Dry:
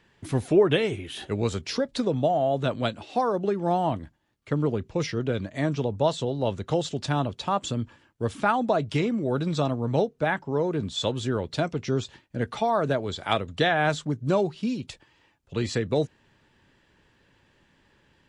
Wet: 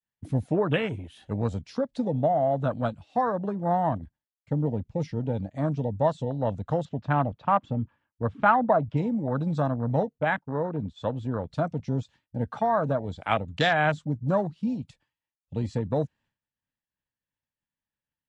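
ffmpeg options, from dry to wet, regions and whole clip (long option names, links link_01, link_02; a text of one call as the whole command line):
ffmpeg -i in.wav -filter_complex "[0:a]asettb=1/sr,asplit=3[link_01][link_02][link_03];[link_01]atrim=end=6.854[link_04];[link_02]atrim=start=6.85:end=8.97,asetpts=PTS-STARTPTS,afade=type=in:duration=0.004:curve=qsin,afade=type=out:start_time=2.116:duration=0.004:curve=qsin,lowpass=2500,equalizer=frequency=1000:width=0.72:gain=3.5[link_05];[link_03]atrim=start=8.966[link_06];[link_04][link_05]acrossfade=duration=0.004:curve1=hsin:curve2=qsin[link_07];[link_07][link_06]acrossfade=duration=0.004:curve1=qsin:curve2=hsin,asettb=1/sr,asplit=3[link_08][link_09][link_10];[link_08]atrim=end=10.184[link_11];[link_09]atrim=start=10.18:end=11.48,asetpts=PTS-STARTPTS,afade=type=in:duration=0.004:curve=qsin,afade=type=out:start_time=1.296:duration=0.004:curve=qsin,bass=frequency=250:gain=-2,treble=frequency=4000:gain=-10,agate=range=-33dB:threshold=-38dB:ratio=3:release=100:detection=peak[link_12];[link_10]atrim=start=11.476[link_13];[link_11][link_12]acrossfade=duration=0.004:curve1=hsin:curve2=qsin[link_14];[link_14][link_13]acrossfade=duration=0.004:curve1=qsin:curve2=hsin,agate=range=-33dB:threshold=-51dB:ratio=3:detection=peak,afwtdn=0.0282,equalizer=frequency=380:width=3.6:gain=-13,volume=1dB" out.wav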